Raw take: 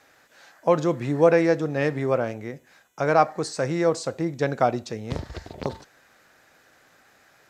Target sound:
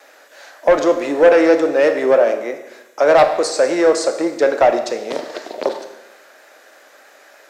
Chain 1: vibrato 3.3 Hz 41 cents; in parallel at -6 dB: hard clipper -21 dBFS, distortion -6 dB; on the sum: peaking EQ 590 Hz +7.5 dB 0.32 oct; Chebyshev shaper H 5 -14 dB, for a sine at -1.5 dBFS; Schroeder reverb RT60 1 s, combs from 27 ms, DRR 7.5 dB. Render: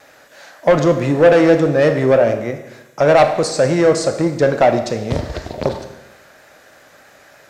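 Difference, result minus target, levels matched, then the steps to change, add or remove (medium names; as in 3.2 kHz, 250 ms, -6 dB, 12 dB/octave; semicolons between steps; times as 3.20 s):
250 Hz band +2.5 dB
add after the parallel path: high-pass 310 Hz 24 dB/octave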